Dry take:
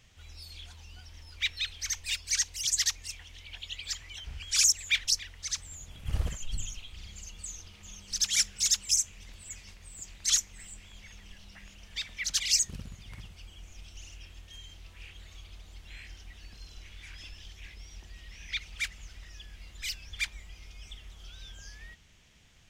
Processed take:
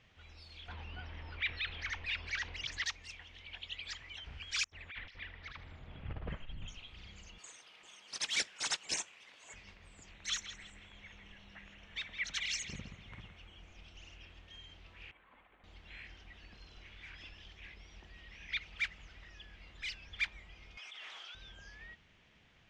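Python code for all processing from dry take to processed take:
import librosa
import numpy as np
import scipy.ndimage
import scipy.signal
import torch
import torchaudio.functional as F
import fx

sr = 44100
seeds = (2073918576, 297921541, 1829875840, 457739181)

y = fx.chain(x, sr, fx.lowpass(hz=2700.0, slope=12),
    fx.env_flatten(amount_pct=50), at=(0.68, 2.84))
y = fx.chain(y, sr, fx.over_compress(threshold_db=-34.0, ratio=-1.0),
    fx.air_absorb(metres=390.0),
    fx.echo_thinned(ms=78, feedback_pct=73, hz=1000.0, wet_db=-13), at=(4.64, 6.68))
y = fx.chain(y, sr, fx.bessel_highpass(hz=740.0, order=2),
    fx.high_shelf(hz=7600.0, db=10.0),
    fx.resample_bad(factor=3, down='none', up='hold'), at=(7.38, 9.54))
y = fx.chain(y, sr, fx.notch(hz=4800.0, q=5.3),
    fx.echo_banded(ms=165, feedback_pct=41, hz=2000.0, wet_db=-9), at=(10.11, 13.58))
y = fx.chain(y, sr, fx.pre_emphasis(coefficient=0.9),
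    fx.comb(ms=3.8, depth=0.46),
    fx.resample_linear(factor=8), at=(15.11, 15.64))
y = fx.chain(y, sr, fx.highpass(hz=900.0, slope=12),
    fx.env_flatten(amount_pct=100), at=(20.77, 21.35))
y = scipy.signal.sosfilt(scipy.signal.butter(2, 2800.0, 'lowpass', fs=sr, output='sos'), y)
y = fx.low_shelf(y, sr, hz=100.0, db=-11.5)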